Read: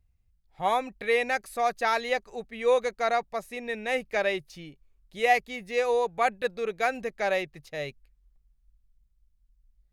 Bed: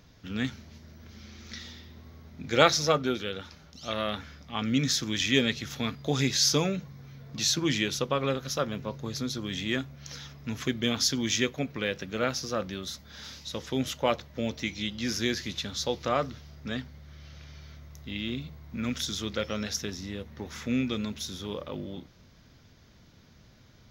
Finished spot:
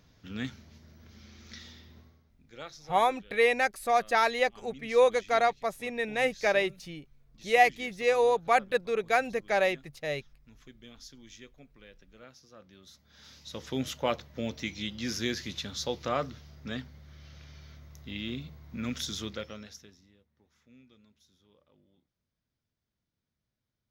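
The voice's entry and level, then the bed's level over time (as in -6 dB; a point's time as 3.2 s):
2.30 s, +1.0 dB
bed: 1.99 s -5 dB
2.38 s -23.5 dB
12.51 s -23.5 dB
13.67 s -3 dB
19.23 s -3 dB
20.27 s -30 dB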